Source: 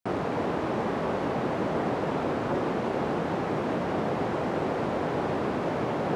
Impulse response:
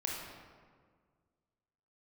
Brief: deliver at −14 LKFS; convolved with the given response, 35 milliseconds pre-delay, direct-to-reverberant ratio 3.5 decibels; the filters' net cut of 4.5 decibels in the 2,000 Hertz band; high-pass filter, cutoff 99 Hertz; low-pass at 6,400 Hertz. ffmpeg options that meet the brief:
-filter_complex "[0:a]highpass=99,lowpass=6400,equalizer=frequency=2000:width_type=o:gain=-6,asplit=2[link_01][link_02];[1:a]atrim=start_sample=2205,adelay=35[link_03];[link_02][link_03]afir=irnorm=-1:irlink=0,volume=-6.5dB[link_04];[link_01][link_04]amix=inputs=2:normalize=0,volume=14dB"

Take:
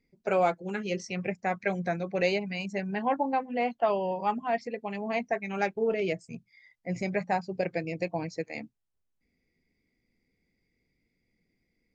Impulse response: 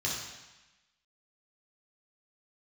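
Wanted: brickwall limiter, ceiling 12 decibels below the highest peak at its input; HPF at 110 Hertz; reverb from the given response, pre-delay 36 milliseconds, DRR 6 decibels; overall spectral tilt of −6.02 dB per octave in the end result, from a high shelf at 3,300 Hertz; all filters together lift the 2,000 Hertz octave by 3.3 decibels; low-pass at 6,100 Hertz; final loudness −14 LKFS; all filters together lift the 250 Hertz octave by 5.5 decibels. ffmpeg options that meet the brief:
-filter_complex "[0:a]highpass=110,lowpass=6100,equalizer=frequency=250:width_type=o:gain=8,equalizer=frequency=2000:width_type=o:gain=6,highshelf=frequency=3300:gain=-6.5,alimiter=limit=-22.5dB:level=0:latency=1,asplit=2[link_01][link_02];[1:a]atrim=start_sample=2205,adelay=36[link_03];[link_02][link_03]afir=irnorm=-1:irlink=0,volume=-12.5dB[link_04];[link_01][link_04]amix=inputs=2:normalize=0,volume=17.5dB"

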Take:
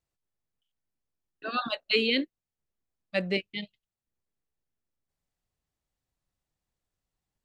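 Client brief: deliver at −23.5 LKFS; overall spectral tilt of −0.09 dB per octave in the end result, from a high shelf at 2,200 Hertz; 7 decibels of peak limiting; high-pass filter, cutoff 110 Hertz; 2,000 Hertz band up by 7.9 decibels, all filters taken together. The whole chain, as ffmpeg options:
ffmpeg -i in.wav -af "highpass=110,equalizer=frequency=2000:width_type=o:gain=4.5,highshelf=frequency=2200:gain=8.5,volume=2dB,alimiter=limit=-10dB:level=0:latency=1" out.wav

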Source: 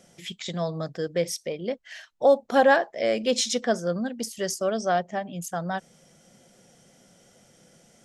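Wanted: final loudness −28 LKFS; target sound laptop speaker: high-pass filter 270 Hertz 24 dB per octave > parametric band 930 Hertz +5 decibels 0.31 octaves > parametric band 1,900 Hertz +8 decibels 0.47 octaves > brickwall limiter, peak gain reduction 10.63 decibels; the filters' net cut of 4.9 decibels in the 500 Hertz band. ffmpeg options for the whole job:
ffmpeg -i in.wav -af "highpass=frequency=270:width=0.5412,highpass=frequency=270:width=1.3066,equalizer=frequency=500:width_type=o:gain=-6,equalizer=frequency=930:width_type=o:width=0.31:gain=5,equalizer=frequency=1900:width_type=o:width=0.47:gain=8,volume=2.5dB,alimiter=limit=-14.5dB:level=0:latency=1" out.wav

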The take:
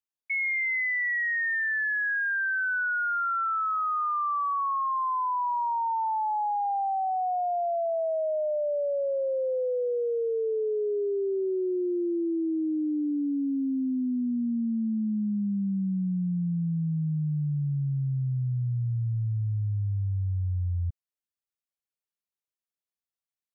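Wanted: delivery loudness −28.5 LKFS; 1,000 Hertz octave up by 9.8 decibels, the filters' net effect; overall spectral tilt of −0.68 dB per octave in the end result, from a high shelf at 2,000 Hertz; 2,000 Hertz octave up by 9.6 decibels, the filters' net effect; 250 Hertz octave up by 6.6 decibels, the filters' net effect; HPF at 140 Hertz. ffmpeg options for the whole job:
ffmpeg -i in.wav -af "highpass=140,equalizer=frequency=250:width_type=o:gain=8.5,equalizer=frequency=1000:width_type=o:gain=9,highshelf=frequency=2000:gain=4.5,equalizer=frequency=2000:width_type=o:gain=6,volume=-9dB" out.wav

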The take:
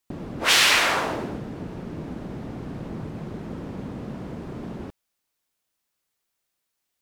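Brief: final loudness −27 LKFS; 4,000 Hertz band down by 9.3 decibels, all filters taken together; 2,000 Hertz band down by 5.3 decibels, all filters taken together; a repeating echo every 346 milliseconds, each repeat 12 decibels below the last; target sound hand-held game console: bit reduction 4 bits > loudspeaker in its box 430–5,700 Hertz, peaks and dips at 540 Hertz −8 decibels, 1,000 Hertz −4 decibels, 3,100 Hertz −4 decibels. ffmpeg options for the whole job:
ffmpeg -i in.wav -af "equalizer=frequency=2000:width_type=o:gain=-3.5,equalizer=frequency=4000:width_type=o:gain=-8,aecho=1:1:346|692|1038:0.251|0.0628|0.0157,acrusher=bits=3:mix=0:aa=0.000001,highpass=430,equalizer=frequency=540:width_type=q:width=4:gain=-8,equalizer=frequency=1000:width_type=q:width=4:gain=-4,equalizer=frequency=3100:width_type=q:width=4:gain=-4,lowpass=frequency=5700:width=0.5412,lowpass=frequency=5700:width=1.3066,volume=-2dB" out.wav

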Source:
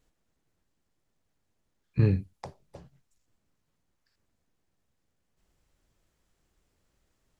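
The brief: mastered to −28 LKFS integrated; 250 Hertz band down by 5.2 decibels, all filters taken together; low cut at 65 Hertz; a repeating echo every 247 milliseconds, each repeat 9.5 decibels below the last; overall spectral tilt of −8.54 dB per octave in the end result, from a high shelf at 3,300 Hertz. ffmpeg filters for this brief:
ffmpeg -i in.wav -af "highpass=65,equalizer=frequency=250:width_type=o:gain=-8,highshelf=frequency=3300:gain=3.5,aecho=1:1:247|494|741|988:0.335|0.111|0.0365|0.012,volume=3dB" out.wav

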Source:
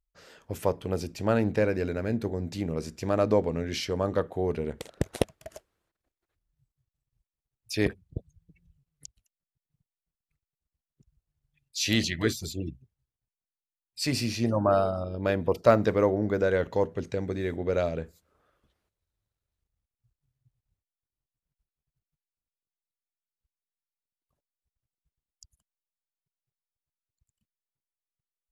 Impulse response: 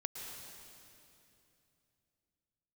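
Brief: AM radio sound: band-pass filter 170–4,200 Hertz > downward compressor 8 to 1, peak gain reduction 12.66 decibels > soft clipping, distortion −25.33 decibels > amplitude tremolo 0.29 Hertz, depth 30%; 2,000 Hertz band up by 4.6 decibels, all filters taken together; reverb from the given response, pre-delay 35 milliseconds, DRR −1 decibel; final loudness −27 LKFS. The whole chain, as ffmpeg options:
-filter_complex "[0:a]equalizer=frequency=2000:width_type=o:gain=6,asplit=2[link_01][link_02];[1:a]atrim=start_sample=2205,adelay=35[link_03];[link_02][link_03]afir=irnorm=-1:irlink=0,volume=1.5dB[link_04];[link_01][link_04]amix=inputs=2:normalize=0,highpass=170,lowpass=4200,acompressor=threshold=-23dB:ratio=8,asoftclip=threshold=-14.5dB,tremolo=f=0.29:d=0.3,volume=4.5dB"

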